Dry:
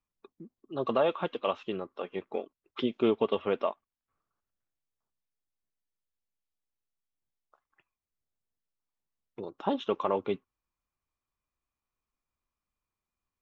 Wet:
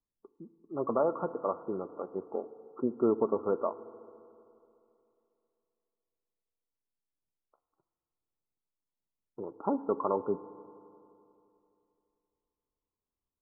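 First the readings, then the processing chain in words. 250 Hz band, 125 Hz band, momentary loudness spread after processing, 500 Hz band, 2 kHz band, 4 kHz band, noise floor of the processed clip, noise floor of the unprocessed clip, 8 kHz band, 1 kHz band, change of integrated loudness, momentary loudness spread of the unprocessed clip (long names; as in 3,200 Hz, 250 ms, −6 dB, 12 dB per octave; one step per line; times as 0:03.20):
−0.5 dB, −2.0 dB, 18 LU, −1.0 dB, below −10 dB, below −40 dB, below −85 dBFS, below −85 dBFS, can't be measured, −1.5 dB, −1.5 dB, 12 LU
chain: Chebyshev low-pass with heavy ripple 1,400 Hz, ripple 3 dB
low-pass that shuts in the quiet parts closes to 840 Hz, open at −29.5 dBFS
feedback delay network reverb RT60 2.8 s, high-frequency decay 1×, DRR 13.5 dB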